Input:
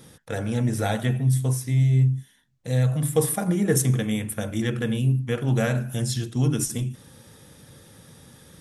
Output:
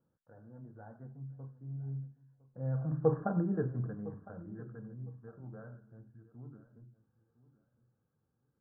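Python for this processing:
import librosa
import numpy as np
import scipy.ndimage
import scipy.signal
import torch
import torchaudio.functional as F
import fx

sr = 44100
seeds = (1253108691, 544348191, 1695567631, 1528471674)

y = fx.doppler_pass(x, sr, speed_mps=13, closest_m=2.9, pass_at_s=3.19)
y = scipy.signal.sosfilt(scipy.signal.butter(16, 1600.0, 'lowpass', fs=sr, output='sos'), y)
y = fx.echo_feedback(y, sr, ms=1008, feedback_pct=20, wet_db=-18)
y = y * librosa.db_to_amplitude(-5.5)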